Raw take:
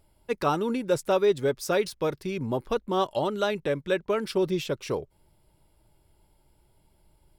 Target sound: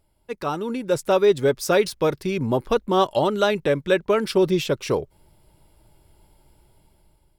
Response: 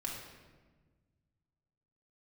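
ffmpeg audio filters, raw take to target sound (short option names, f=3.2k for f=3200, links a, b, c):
-af "dynaudnorm=f=360:g=5:m=10.5dB,volume=-3dB"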